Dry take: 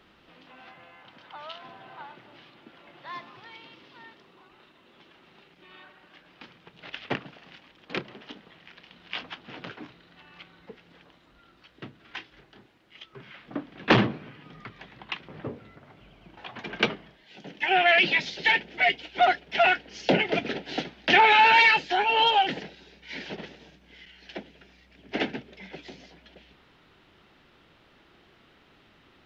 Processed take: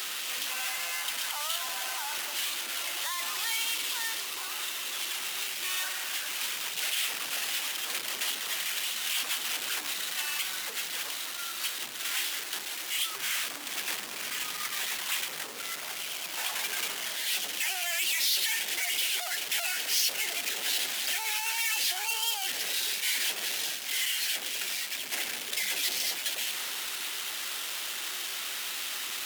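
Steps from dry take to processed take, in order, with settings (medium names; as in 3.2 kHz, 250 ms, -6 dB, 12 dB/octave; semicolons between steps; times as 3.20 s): power-law waveshaper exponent 0.35; peak limiter -17.5 dBFS, peak gain reduction 11.5 dB; high-pass 230 Hz 6 dB/octave; differentiator; AAC 96 kbps 48 kHz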